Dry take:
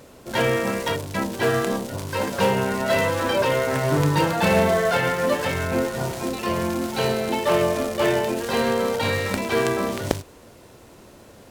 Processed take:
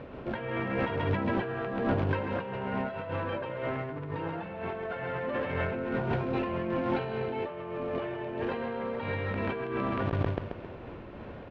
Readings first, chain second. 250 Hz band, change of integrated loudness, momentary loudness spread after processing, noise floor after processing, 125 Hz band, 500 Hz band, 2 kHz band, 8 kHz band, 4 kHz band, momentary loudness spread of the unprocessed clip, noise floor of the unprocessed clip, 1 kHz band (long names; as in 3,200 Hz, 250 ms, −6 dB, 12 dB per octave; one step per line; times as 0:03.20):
−8.0 dB, −10.0 dB, 7 LU, −44 dBFS, −6.5 dB, −10.5 dB, −11.0 dB, below −40 dB, −18.0 dB, 7 LU, −48 dBFS, −10.0 dB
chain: low-shelf EQ 230 Hz +3 dB
on a send: repeating echo 134 ms, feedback 39%, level −5 dB
on the sum: compressor whose output falls as the input rises −28 dBFS, ratio −1
low-pass filter 2,700 Hz 24 dB per octave
notch filter 2,000 Hz, Q 25
amplitude modulation by smooth noise, depth 55%
level −1.5 dB